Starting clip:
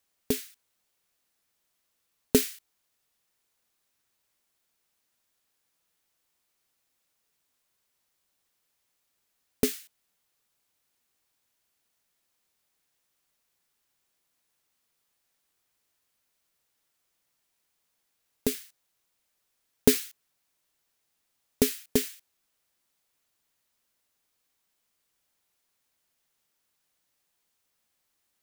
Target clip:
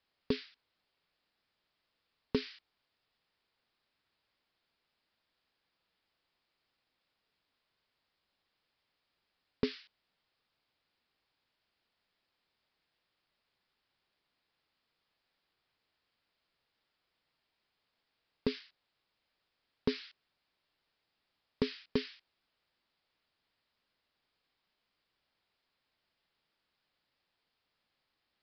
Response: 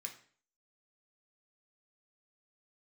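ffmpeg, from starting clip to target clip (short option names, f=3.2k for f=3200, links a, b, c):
-af "acompressor=threshold=-23dB:ratio=10,aresample=11025,asoftclip=type=tanh:threshold=-18dB,aresample=44100"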